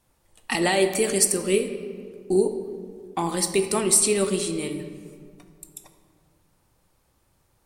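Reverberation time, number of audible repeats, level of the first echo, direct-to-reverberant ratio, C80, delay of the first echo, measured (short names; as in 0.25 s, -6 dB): 2.1 s, none, none, 7.0 dB, 10.0 dB, none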